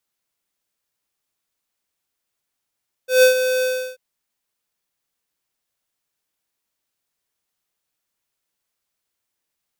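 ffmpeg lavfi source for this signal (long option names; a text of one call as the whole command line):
ffmpeg -f lavfi -i "aevalsrc='0.316*(2*lt(mod(510*t,1),0.5)-1)':duration=0.888:sample_rate=44100,afade=type=in:duration=0.149,afade=type=out:start_time=0.149:duration=0.11:silence=0.335,afade=type=out:start_time=0.55:duration=0.338" out.wav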